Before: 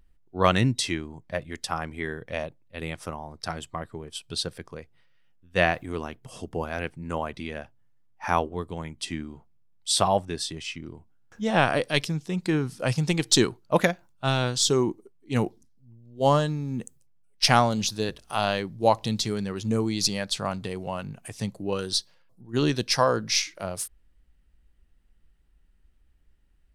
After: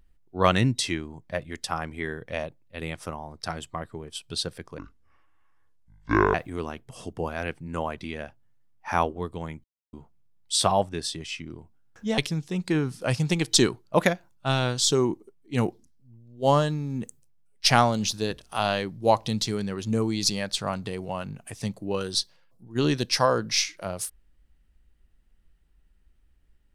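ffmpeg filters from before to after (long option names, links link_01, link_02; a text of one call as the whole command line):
ffmpeg -i in.wav -filter_complex "[0:a]asplit=6[link_01][link_02][link_03][link_04][link_05][link_06];[link_01]atrim=end=4.784[link_07];[link_02]atrim=start=4.78:end=5.7,asetpts=PTS-STARTPTS,asetrate=26019,aresample=44100,atrim=end_sample=68766,asetpts=PTS-STARTPTS[link_08];[link_03]atrim=start=5.696:end=9,asetpts=PTS-STARTPTS,afade=type=out:start_time=3.3:duration=0.004:curve=hsin[link_09];[link_04]atrim=start=9:end=9.29,asetpts=PTS-STARTPTS,volume=0[link_10];[link_05]atrim=start=9.29:end=11.542,asetpts=PTS-STARTPTS,afade=type=in:duration=0.004:curve=hsin[link_11];[link_06]atrim=start=11.958[link_12];[link_07][link_08]acrossfade=duration=0.004:curve1=hsin:curve2=hsin[link_13];[link_09][link_10][link_11]concat=n=3:v=0:a=1[link_14];[link_13][link_14]acrossfade=duration=0.004:curve1=hsin:curve2=hsin[link_15];[link_15][link_12]acrossfade=duration=0.004:curve1=hsin:curve2=hsin" out.wav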